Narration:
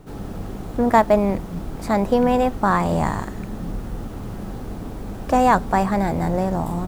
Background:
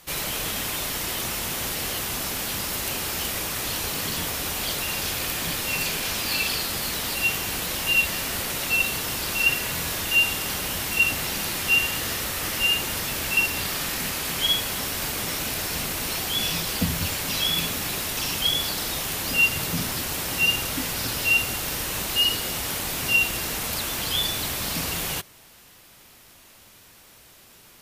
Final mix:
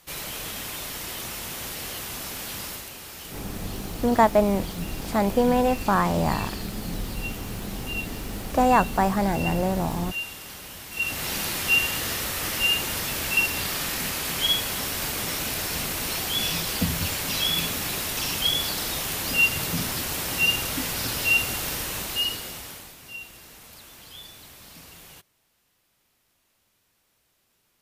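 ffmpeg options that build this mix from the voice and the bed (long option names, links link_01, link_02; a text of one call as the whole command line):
ffmpeg -i stem1.wav -i stem2.wav -filter_complex "[0:a]adelay=3250,volume=-3dB[link_01];[1:a]volume=6dB,afade=type=out:start_time=2.67:duration=0.22:silence=0.473151,afade=type=in:start_time=10.9:duration=0.43:silence=0.266073,afade=type=out:start_time=21.65:duration=1.31:silence=0.125893[link_02];[link_01][link_02]amix=inputs=2:normalize=0" out.wav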